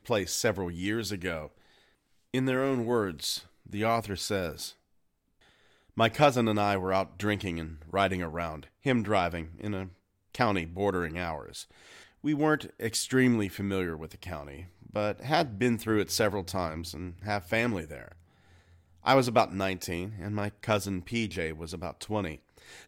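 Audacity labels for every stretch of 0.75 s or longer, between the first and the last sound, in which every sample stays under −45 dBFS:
1.480000	2.340000	silence
4.720000	5.970000	silence
18.130000	19.030000	silence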